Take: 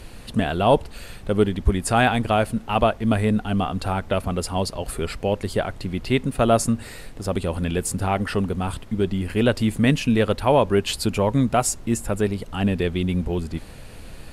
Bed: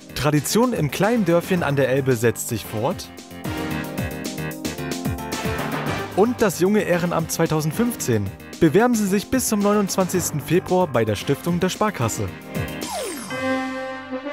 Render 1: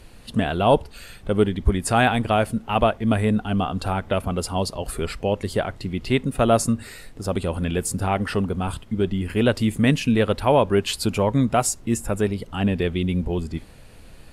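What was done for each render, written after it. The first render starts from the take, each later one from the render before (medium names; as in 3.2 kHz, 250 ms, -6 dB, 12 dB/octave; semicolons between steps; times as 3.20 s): noise print and reduce 6 dB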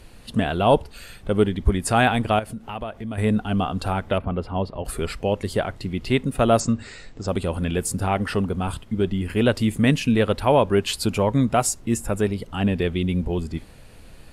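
2.39–3.18 s: compression 3:1, threshold -31 dBFS; 4.18–4.85 s: distance through air 410 m; 6.60–7.28 s: steep low-pass 8 kHz 96 dB/octave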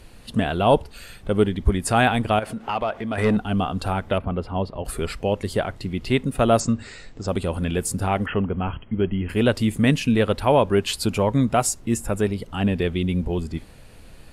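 2.42–3.37 s: overdrive pedal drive 18 dB, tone 2.1 kHz, clips at -10 dBFS; 8.26–9.29 s: brick-wall FIR low-pass 3.3 kHz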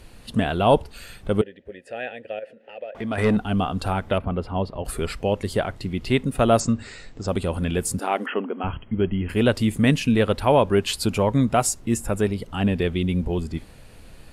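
1.41–2.95 s: vowel filter e; 7.99–8.64 s: brick-wall FIR high-pass 210 Hz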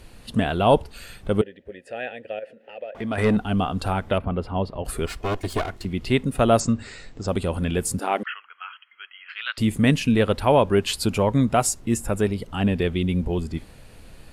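5.06–5.85 s: comb filter that takes the minimum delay 2.8 ms; 8.23–9.58 s: elliptic band-pass 1.3–4.3 kHz, stop band 80 dB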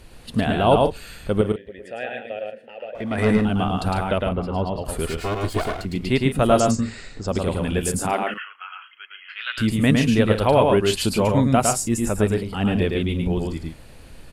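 loudspeakers at several distances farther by 37 m -3 dB, 50 m -11 dB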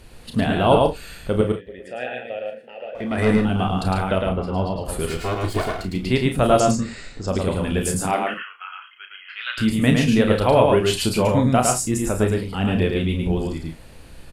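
early reflections 32 ms -7.5 dB, 49 ms -14.5 dB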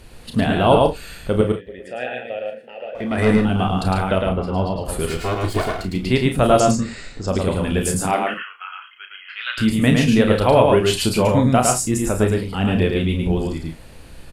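trim +2 dB; peak limiter -3 dBFS, peak gain reduction 1.5 dB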